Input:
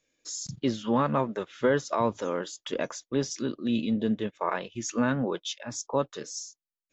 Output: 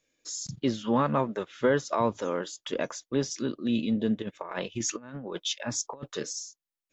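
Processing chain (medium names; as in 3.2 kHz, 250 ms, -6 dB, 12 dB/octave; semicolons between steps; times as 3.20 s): 4.22–6.33 s: compressor with a negative ratio -33 dBFS, ratio -0.5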